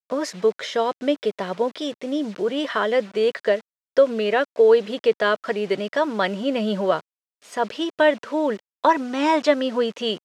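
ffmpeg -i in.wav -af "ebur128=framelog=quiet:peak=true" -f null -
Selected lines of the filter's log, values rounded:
Integrated loudness:
  I:         -22.2 LUFS
  Threshold: -32.3 LUFS
Loudness range:
  LRA:         3.3 LU
  Threshold: -42.2 LUFS
  LRA low:   -24.0 LUFS
  LRA high:  -20.7 LUFS
True peak:
  Peak:       -4.5 dBFS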